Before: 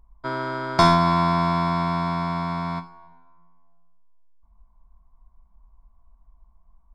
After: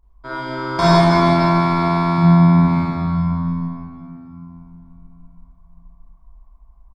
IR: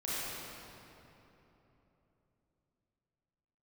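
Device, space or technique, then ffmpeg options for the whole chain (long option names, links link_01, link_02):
cave: -filter_complex "[0:a]asettb=1/sr,asplit=3[link_01][link_02][link_03];[link_01]atrim=end=2.184[link_04];[link_02]atrim=start=2.18:end=2.61,asetpts=PTS-STARTPTS,afade=type=in:duration=0.004:curve=qsin,afade=type=out:start_time=0.426:duration=0.004:curve=qsin,bass=frequency=250:gain=14,treble=frequency=4000:gain=-14[link_05];[link_03]atrim=start=2.606[link_06];[link_04][link_05]acrossfade=duration=0.004:curve1=hsin:curve2=qsin[link_07];[link_07][link_06]acrossfade=duration=0.004:curve1=qsin:curve2=hsin,aecho=1:1:308:0.224[link_08];[1:a]atrim=start_sample=2205[link_09];[link_08][link_09]afir=irnorm=-1:irlink=0"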